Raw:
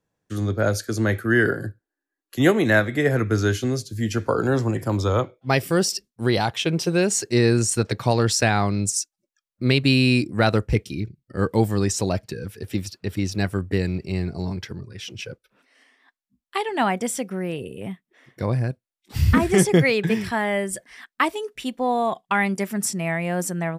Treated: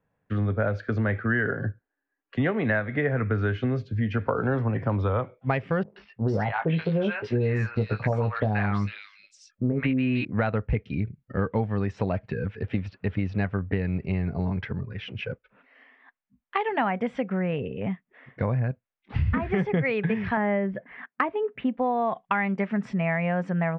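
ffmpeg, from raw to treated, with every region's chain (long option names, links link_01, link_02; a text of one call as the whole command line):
ffmpeg -i in.wav -filter_complex "[0:a]asettb=1/sr,asplit=3[link_01][link_02][link_03];[link_01]atrim=end=5.834[link_04];[link_02]atrim=start=5.83:end=10.25,asetpts=PTS-STARTPTS,afade=type=in:duration=0.004:curve=qsin,afade=type=out:start_time=4.416:duration=0.004:curve=qsin,asplit=2[link_05][link_06];[link_06]adelay=19,volume=-7dB[link_07];[link_05][link_07]amix=inputs=2:normalize=0,atrim=end_sample=194922,acrossover=split=850|3000[link_08][link_09][link_10];[link_09]adelay=130[link_11];[link_10]adelay=450[link_12];[link_08][link_11][link_12]amix=inputs=3:normalize=0,atrim=end_sample=194922[link_13];[link_03]atrim=start=10.246[link_14];[link_04][link_13]acrossfade=duration=0.004:curve1=hsin:curve2=qsin[link_15];[link_15][link_14]acrossfade=duration=0.004:curve1=qsin:curve2=hsin,asettb=1/sr,asplit=3[link_16][link_17][link_18];[link_16]atrim=end=20.374[link_19];[link_17]atrim=start=20.37:end=21.77,asetpts=PTS-STARTPTS,afade=type=in:duration=0.004:curve=qsin,afade=type=out:start_time=1.396:duration=0.004:curve=qsin,highpass=200,lowpass=3700,aemphasis=mode=reproduction:type=riaa[link_20];[link_18]atrim=start=21.766[link_21];[link_19][link_20]acrossfade=duration=0.004:curve1=hsin:curve2=qsin[link_22];[link_22][link_21]acrossfade=duration=0.004:curve1=qsin:curve2=hsin,lowpass=frequency=2500:width=0.5412,lowpass=frequency=2500:width=1.3066,equalizer=frequency=340:width=5.8:gain=-12.5,acompressor=threshold=-26dB:ratio=6,volume=4dB" out.wav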